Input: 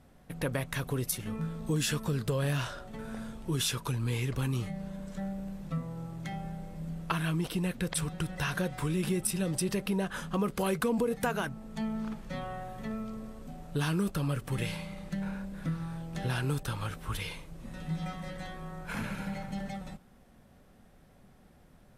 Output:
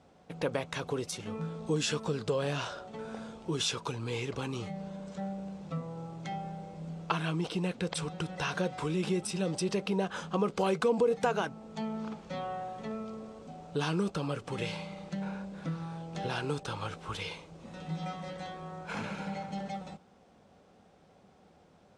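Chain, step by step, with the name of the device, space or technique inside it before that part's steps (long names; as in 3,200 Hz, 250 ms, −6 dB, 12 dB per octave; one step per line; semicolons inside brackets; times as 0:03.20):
car door speaker (loudspeaker in its box 110–7,400 Hz, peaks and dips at 130 Hz −9 dB, 240 Hz −5 dB, 460 Hz +4 dB, 800 Hz +4 dB, 1,800 Hz −6 dB)
level +1 dB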